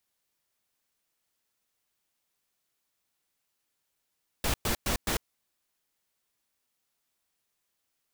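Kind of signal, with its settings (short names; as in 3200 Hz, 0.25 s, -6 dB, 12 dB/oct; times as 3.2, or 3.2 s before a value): noise bursts pink, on 0.10 s, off 0.11 s, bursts 4, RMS -28 dBFS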